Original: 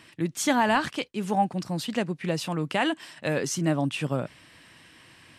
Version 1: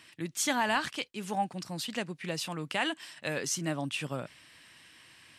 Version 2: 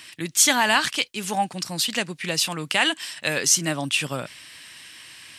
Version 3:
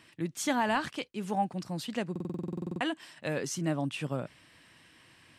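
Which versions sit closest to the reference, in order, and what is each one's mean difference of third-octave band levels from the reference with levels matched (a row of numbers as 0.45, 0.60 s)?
3, 1, 2; 1.5, 3.0, 6.5 dB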